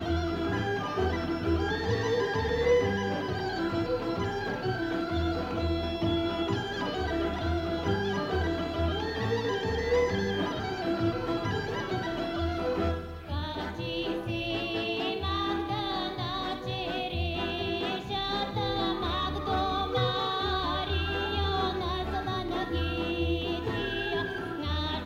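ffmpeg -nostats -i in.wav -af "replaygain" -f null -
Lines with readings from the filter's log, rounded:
track_gain = +12.3 dB
track_peak = 0.129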